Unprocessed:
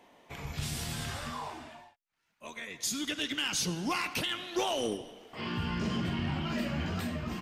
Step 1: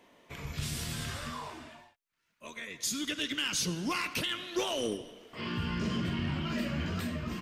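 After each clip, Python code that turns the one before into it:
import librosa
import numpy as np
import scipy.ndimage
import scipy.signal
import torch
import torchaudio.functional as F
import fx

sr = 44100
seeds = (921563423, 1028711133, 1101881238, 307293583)

y = fx.peak_eq(x, sr, hz=790.0, db=-9.0, octaves=0.33)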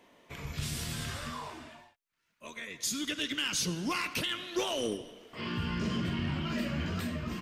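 y = x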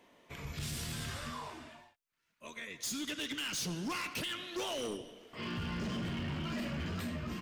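y = np.clip(x, -10.0 ** (-31.5 / 20.0), 10.0 ** (-31.5 / 20.0))
y = y * 10.0 ** (-2.5 / 20.0)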